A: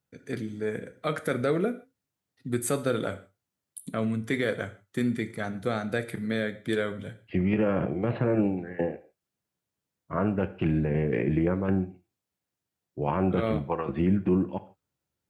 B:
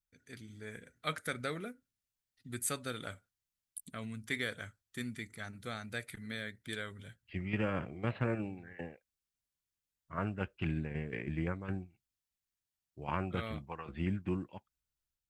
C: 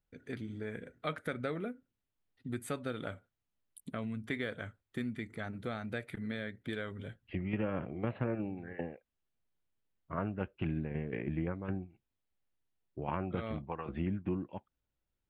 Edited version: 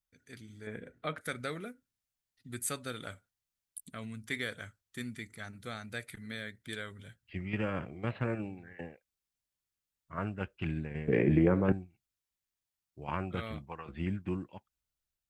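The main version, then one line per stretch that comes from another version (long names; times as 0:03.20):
B
0:00.67–0:01.21: punch in from C
0:11.08–0:11.72: punch in from A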